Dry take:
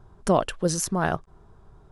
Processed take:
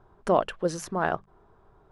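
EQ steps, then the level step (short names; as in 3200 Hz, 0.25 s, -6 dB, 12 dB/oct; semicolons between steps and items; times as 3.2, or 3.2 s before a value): tone controls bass -9 dB, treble -6 dB; high shelf 4500 Hz -9 dB; notches 50/100/150/200 Hz; 0.0 dB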